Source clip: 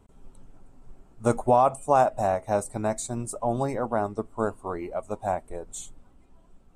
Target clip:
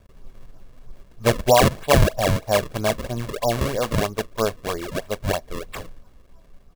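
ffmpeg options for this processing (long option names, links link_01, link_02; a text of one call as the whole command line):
ffmpeg -i in.wav -af "acrusher=samples=33:mix=1:aa=0.000001:lfo=1:lforange=52.8:lforate=3.1,aecho=1:1:1.8:0.37,volume=4dB" out.wav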